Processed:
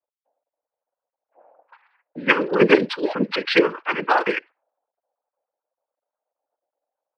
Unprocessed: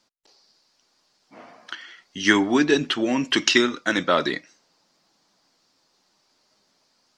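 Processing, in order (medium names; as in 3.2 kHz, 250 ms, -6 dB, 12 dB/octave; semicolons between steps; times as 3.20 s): formants replaced by sine waves; noise-vocoded speech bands 8; level-controlled noise filter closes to 530 Hz, open at -18 dBFS; trim +1.5 dB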